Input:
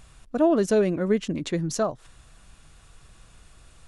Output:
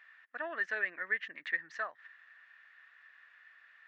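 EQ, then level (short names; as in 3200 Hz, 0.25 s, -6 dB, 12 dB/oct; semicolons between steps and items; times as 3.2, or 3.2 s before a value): resonant high-pass 1800 Hz, resonance Q 13; air absorption 64 m; tape spacing loss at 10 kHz 41 dB; 0.0 dB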